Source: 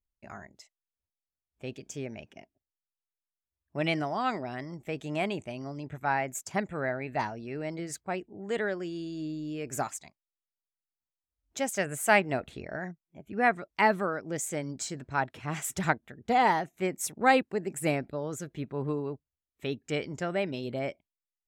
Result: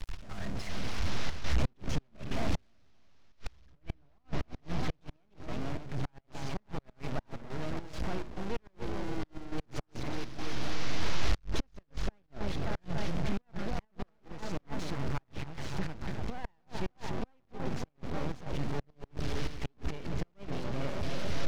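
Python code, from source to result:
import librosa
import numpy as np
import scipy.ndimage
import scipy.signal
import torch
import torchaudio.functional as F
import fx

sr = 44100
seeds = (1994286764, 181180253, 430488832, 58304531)

p1 = fx.delta_mod(x, sr, bps=32000, step_db=-29.0)
p2 = fx.recorder_agc(p1, sr, target_db=-18.5, rise_db_per_s=5.3, max_gain_db=30)
p3 = 10.0 ** (-26.0 / 20.0) * np.tanh(p2 / 10.0 ** (-26.0 / 20.0))
p4 = p2 + (p3 * 10.0 ** (-6.0 / 20.0))
p5 = fx.high_shelf(p4, sr, hz=3900.0, db=-8.0)
p6 = p5 + fx.echo_opening(p5, sr, ms=290, hz=750, octaves=1, feedback_pct=70, wet_db=-6, dry=0)
p7 = np.maximum(p6, 0.0)
p8 = fx.step_gate(p7, sr, bpm=104, pattern='x.xxxxxxx.xx.x', floor_db=-12.0, edge_ms=4.5)
p9 = fx.transient(p8, sr, attack_db=-3, sustain_db=2)
p10 = fx.gate_flip(p9, sr, shuts_db=-17.0, range_db=-39)
p11 = fx.low_shelf(p10, sr, hz=160.0, db=11.0)
y = p11 * 10.0 ** (-7.5 / 20.0)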